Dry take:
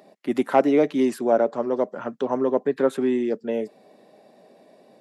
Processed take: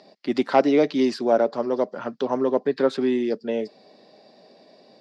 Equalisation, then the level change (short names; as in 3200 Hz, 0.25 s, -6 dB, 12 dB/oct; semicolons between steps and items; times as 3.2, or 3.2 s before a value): synth low-pass 4800 Hz, resonance Q 4.9; 0.0 dB